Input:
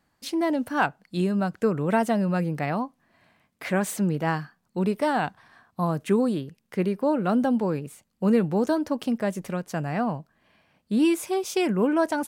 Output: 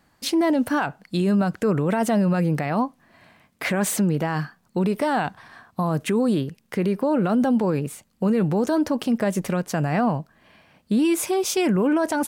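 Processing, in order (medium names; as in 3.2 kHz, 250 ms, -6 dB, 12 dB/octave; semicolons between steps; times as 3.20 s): peak limiter -22.5 dBFS, peak gain reduction 12 dB; trim +8.5 dB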